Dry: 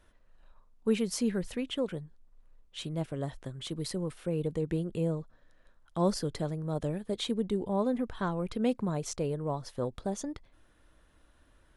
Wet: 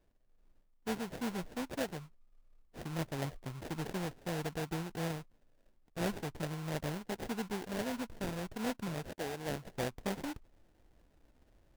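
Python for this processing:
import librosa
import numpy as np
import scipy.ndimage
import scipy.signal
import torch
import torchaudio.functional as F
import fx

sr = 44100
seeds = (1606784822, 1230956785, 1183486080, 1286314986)

y = fx.rider(x, sr, range_db=4, speed_s=0.5)
y = fx.highpass(y, sr, hz=fx.line((9.05, 350.0), (9.65, 140.0)), slope=12, at=(9.05, 9.65), fade=0.02)
y = fx.sample_hold(y, sr, seeds[0], rate_hz=1200.0, jitter_pct=20)
y = F.gain(torch.from_numpy(y), -6.0).numpy()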